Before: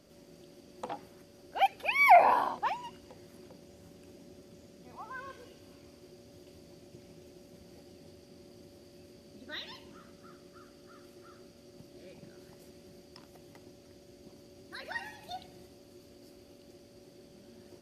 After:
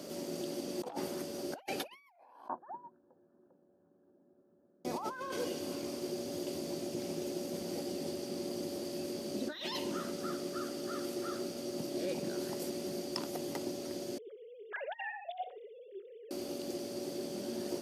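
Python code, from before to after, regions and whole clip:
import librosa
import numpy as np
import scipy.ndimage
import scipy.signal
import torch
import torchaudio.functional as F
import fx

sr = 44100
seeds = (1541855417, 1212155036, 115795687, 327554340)

y = fx.chain(x, sr, fx.brickwall_lowpass(high_hz=1800.0),
    fx.upward_expand(threshold_db=-47.0, expansion=2.5), at=(2.48, 4.85))
y = fx.chain(y, sr, fx.sine_speech(),
    fx.echo_feedback(ms=61, feedback_pct=30, wet_db=-16), at=(14.18, 16.31))
y = fx.over_compress(y, sr, threshold_db=-50.0, ratio=-1.0)
y = scipy.signal.sosfilt(scipy.signal.butter(2, 230.0, 'highpass', fs=sr, output='sos'), y)
y = fx.peak_eq(y, sr, hz=2000.0, db=-6.0, octaves=1.9)
y = y * librosa.db_to_amplitude(8.0)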